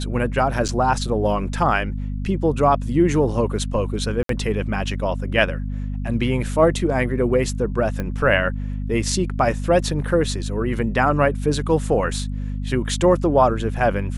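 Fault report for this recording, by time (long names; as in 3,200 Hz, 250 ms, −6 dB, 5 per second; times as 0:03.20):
mains hum 50 Hz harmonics 5 −26 dBFS
0:00.68–0:00.69: drop-out 7.9 ms
0:04.23–0:04.29: drop-out 63 ms
0:08.00: click −13 dBFS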